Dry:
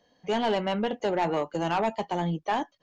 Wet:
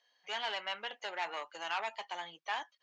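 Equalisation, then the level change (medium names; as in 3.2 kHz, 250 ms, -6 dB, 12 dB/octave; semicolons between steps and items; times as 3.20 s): high-pass 1.5 kHz 12 dB/octave; distance through air 72 m; 0.0 dB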